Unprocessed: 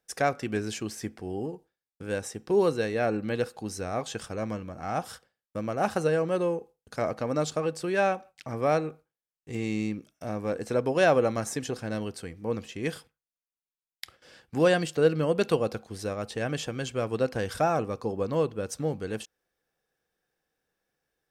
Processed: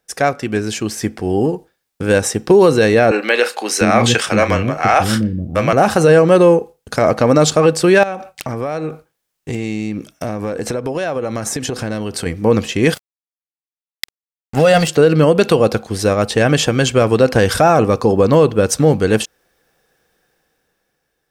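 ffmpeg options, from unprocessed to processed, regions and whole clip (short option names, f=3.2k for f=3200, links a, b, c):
-filter_complex "[0:a]asettb=1/sr,asplit=3[a][b][c];[a]atrim=end=3.114[d];[b]atrim=start=3.11:end=5.73,asetpts=PTS-STARTPTS,afade=t=in:d=0.004:c=qsin,afade=t=out:st=2.616:d=0.004:c=qsin,equalizer=f=2.3k:t=o:w=1.4:g=8.5,asplit=2[e][f];[f]adelay=33,volume=-13dB[g];[e][g]amix=inputs=2:normalize=0,atrim=end_sample=115542,acrossover=split=340[h][i];[h]adelay=700[j];[j][i]amix=inputs=2:normalize=0,atrim=end_sample=115542[k];[c]atrim=start=5.726[l];[d][k]acrossfade=d=0.004:c1=hsin:c2=qsin[m];[m][l]acrossfade=d=0.004:c1=qsin:c2=hsin,asettb=1/sr,asplit=3[n][o][p];[n]atrim=end=8.034[q];[o]atrim=start=8.03:end=12.26,asetpts=PTS-STARTPTS,afade=t=in:d=0.004:c=qsin,afade=t=out:st=4.226:d=0.004:c=qsin,acompressor=threshold=-37dB:ratio=10:attack=3.2:release=140:knee=1:detection=peak,aeval=exprs='(mod(21.1*val(0)+1,2)-1)/21.1':c=same[r];[p]atrim=start=12.256[s];[q][r]acrossfade=d=0.004:c1=hsin:c2=qsin[t];[t][s]acrossfade=d=0.004:c1=qsin:c2=hsin,asettb=1/sr,asplit=3[u][v][w];[u]atrim=end=12.944[x];[v]atrim=start=12.94:end=14.88,asetpts=PTS-STARTPTS,afade=t=in:d=0.004:c=qsin,afade=t=out:st=1.936:d=0.004:c=qsin,aecho=1:1:1.5:0.73,atrim=end_sample=85554,aeval=exprs='sgn(val(0))*max(abs(val(0))-0.0119,0)':c=same[y];[w]atrim=start=14.876[z];[x][y]acrossfade=d=0.004:c1=hsin:c2=qsin[aa];[aa][z]acrossfade=d=0.004:c1=qsin:c2=hsin,dynaudnorm=f=170:g=13:m=9.5dB,alimiter=level_in=11dB:limit=-1dB:release=50:level=0:latency=1,volume=-1dB"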